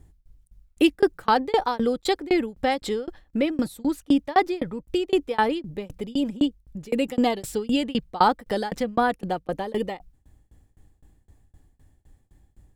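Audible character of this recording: tremolo saw down 3.9 Hz, depth 100%

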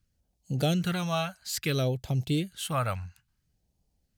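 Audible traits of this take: phasing stages 2, 0.59 Hz, lowest notch 340–1400 Hz

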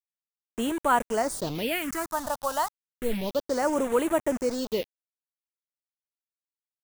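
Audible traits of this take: a quantiser's noise floor 6-bit, dither none; phasing stages 4, 0.31 Hz, lowest notch 360–4800 Hz

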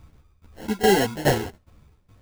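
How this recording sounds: tremolo saw down 2.4 Hz, depth 90%; phasing stages 4, 2.2 Hz, lowest notch 700–1700 Hz; aliases and images of a low sample rate 1200 Hz, jitter 0%; a shimmering, thickened sound

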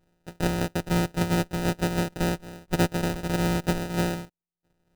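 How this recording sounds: a buzz of ramps at a fixed pitch in blocks of 256 samples; tremolo saw down 3.3 Hz, depth 45%; aliases and images of a low sample rate 1100 Hz, jitter 0%

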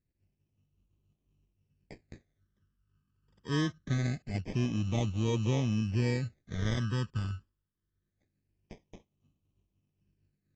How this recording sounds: aliases and images of a low sample rate 1400 Hz, jitter 0%; phasing stages 12, 0.24 Hz, lowest notch 680–1600 Hz; AAC

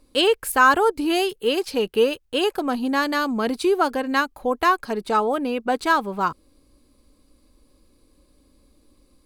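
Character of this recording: noise floor -61 dBFS; spectral tilt -1.0 dB/oct

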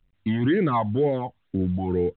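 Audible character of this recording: a quantiser's noise floor 12-bit, dither none; phasing stages 12, 2.1 Hz, lowest notch 390–1100 Hz; µ-law

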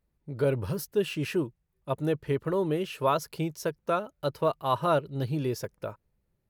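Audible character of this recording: noise floor -78 dBFS; spectral tilt -6.0 dB/oct

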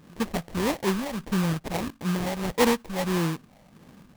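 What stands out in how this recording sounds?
phasing stages 6, 1.6 Hz, lowest notch 330–1300 Hz; aliases and images of a low sample rate 1400 Hz, jitter 20%

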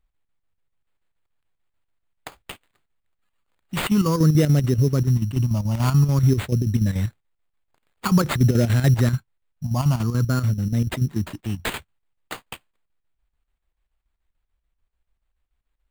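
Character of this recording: chopped level 6.9 Hz, depth 60%, duty 70%; phasing stages 6, 0.49 Hz, lowest notch 430–1000 Hz; aliases and images of a low sample rate 5700 Hz, jitter 0%

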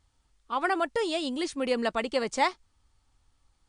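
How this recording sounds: a quantiser's noise floor 12-bit, dither triangular; MP3

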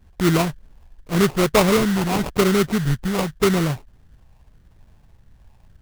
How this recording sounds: phasing stages 8, 0.86 Hz, lowest notch 470–2500 Hz; aliases and images of a low sample rate 1700 Hz, jitter 20%

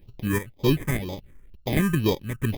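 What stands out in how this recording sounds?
chopped level 1.7 Hz, depth 60%, duty 65%; aliases and images of a low sample rate 1400 Hz, jitter 0%; phasing stages 4, 2 Hz, lowest notch 680–1700 Hz

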